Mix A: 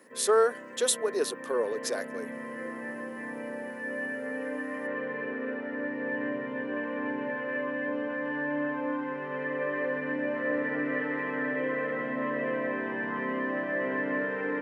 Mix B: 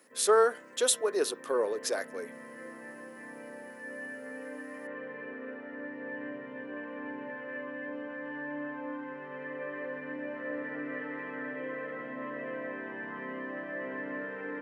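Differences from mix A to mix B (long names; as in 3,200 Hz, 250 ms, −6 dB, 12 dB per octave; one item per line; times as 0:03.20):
background −8.0 dB
reverb: on, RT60 0.35 s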